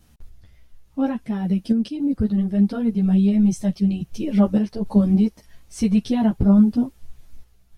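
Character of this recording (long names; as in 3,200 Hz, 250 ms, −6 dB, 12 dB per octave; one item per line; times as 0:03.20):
sample-and-hold tremolo
a shimmering, thickened sound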